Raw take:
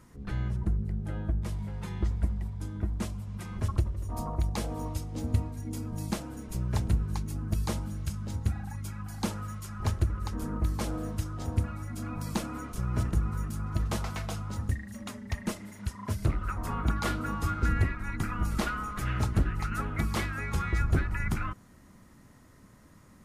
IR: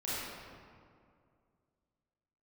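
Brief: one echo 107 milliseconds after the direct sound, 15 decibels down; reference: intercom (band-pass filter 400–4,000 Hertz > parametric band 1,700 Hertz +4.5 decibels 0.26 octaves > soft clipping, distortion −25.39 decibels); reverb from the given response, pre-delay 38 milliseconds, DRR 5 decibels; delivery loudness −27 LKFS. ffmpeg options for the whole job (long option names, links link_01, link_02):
-filter_complex "[0:a]aecho=1:1:107:0.178,asplit=2[link_01][link_02];[1:a]atrim=start_sample=2205,adelay=38[link_03];[link_02][link_03]afir=irnorm=-1:irlink=0,volume=-10dB[link_04];[link_01][link_04]amix=inputs=2:normalize=0,highpass=400,lowpass=4000,equalizer=frequency=1700:width_type=o:width=0.26:gain=4.5,asoftclip=threshold=-22dB,volume=12dB"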